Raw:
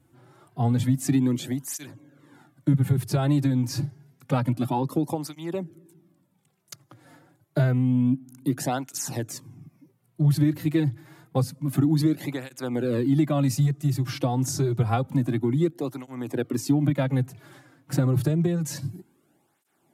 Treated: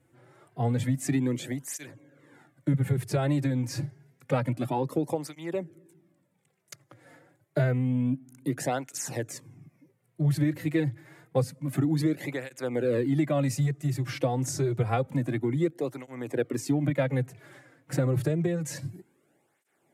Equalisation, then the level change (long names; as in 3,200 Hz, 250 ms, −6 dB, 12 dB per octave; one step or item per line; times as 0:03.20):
octave-band graphic EQ 125/500/2,000/8,000 Hz +4/+11/+11/+6 dB
−8.5 dB